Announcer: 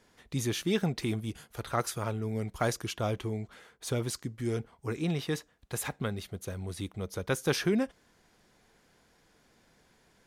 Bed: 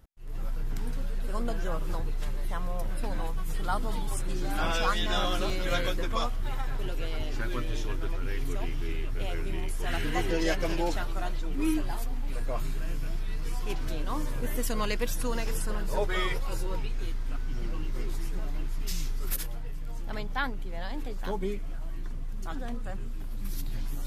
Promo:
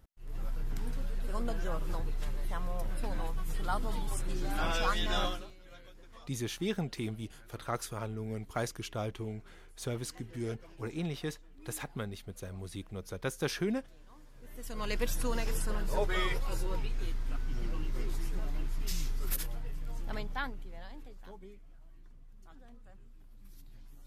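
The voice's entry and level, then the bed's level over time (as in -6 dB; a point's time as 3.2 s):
5.95 s, -5.0 dB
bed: 5.26 s -3.5 dB
5.54 s -25.5 dB
14.31 s -25.5 dB
14.97 s -2.5 dB
20.13 s -2.5 dB
21.49 s -20 dB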